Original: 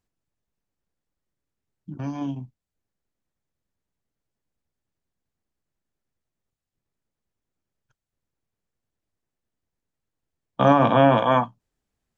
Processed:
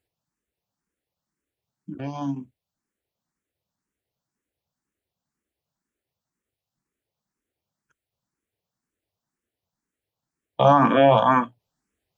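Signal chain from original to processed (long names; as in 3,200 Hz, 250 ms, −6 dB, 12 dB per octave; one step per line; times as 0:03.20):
high-pass filter 120 Hz 6 dB per octave
in parallel at −1.5 dB: brickwall limiter −11.5 dBFS, peak gain reduction 7 dB
on the sum: frequency shifter mixed with the dry sound +2 Hz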